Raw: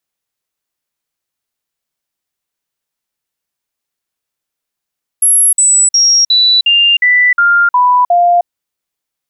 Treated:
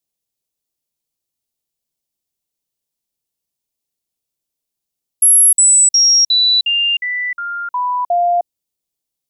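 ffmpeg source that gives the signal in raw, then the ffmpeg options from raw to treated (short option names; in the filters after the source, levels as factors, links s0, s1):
-f lavfi -i "aevalsrc='0.531*clip(min(mod(t,0.36),0.31-mod(t,0.36))/0.005,0,1)*sin(2*PI*11200*pow(2,-floor(t/0.36)/2)*mod(t,0.36))':d=3.24:s=44100"
-af "equalizer=f=1500:t=o:w=1.6:g=-15"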